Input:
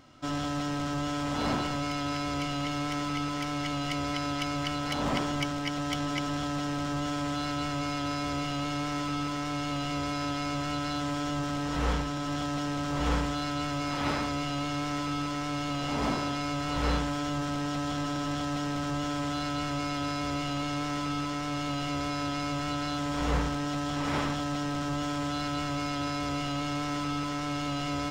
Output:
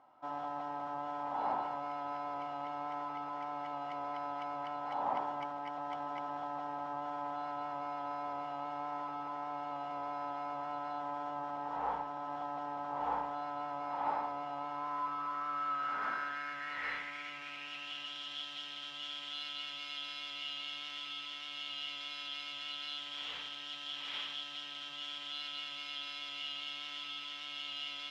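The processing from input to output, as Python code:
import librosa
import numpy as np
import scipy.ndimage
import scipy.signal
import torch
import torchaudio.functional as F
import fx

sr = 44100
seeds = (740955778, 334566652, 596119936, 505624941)

p1 = fx.sample_hold(x, sr, seeds[0], rate_hz=14000.0, jitter_pct=0)
p2 = x + F.gain(torch.from_numpy(p1), -8.0).numpy()
p3 = fx.filter_sweep_bandpass(p2, sr, from_hz=850.0, to_hz=3200.0, start_s=14.54, end_s=18.25, q=5.7)
y = F.gain(torch.from_numpy(p3), 3.0).numpy()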